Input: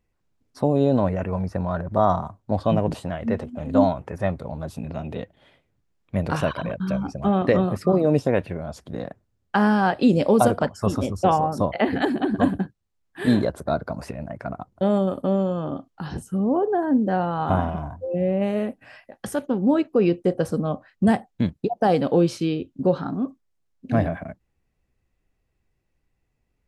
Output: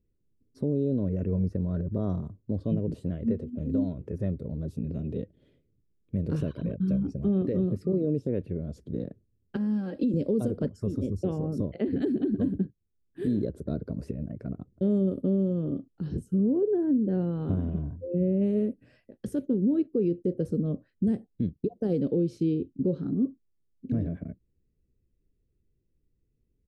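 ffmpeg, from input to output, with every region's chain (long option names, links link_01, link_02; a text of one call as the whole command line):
ffmpeg -i in.wav -filter_complex "[0:a]asettb=1/sr,asplit=3[link_01][link_02][link_03];[link_01]atrim=end=9.564[link_04];[link_02]atrim=start=9.56:end=10.14,asetpts=PTS-STARTPTS,afade=type=in:duration=0.004:curve=qsin,afade=type=out:start_time=0.576:duration=0.004:curve=qsin,highpass=130,aecho=1:1:3.7:0.75,atrim=end_sample=25578,acompressor=threshold=-20dB:ratio=10:attack=3.2:release=140:knee=1:detection=peak[link_05];[link_03]atrim=start=10.136[link_06];[link_04][link_05]acrossfade=duration=0.004:curve1=hsin:curve2=qsin[link_07];[link_07][link_06]acrossfade=duration=0.004:curve1=qsin:curve2=hsin,firequalizer=gain_entry='entry(430,0);entry(770,-26);entry(1500,-20);entry(4000,-15)':delay=0.05:min_phase=1,alimiter=limit=-18dB:level=0:latency=1:release=213" out.wav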